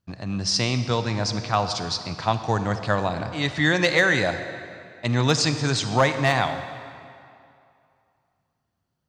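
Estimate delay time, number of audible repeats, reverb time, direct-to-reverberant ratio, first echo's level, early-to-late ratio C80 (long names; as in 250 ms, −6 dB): no echo audible, no echo audible, 2.5 s, 9.0 dB, no echo audible, 10.0 dB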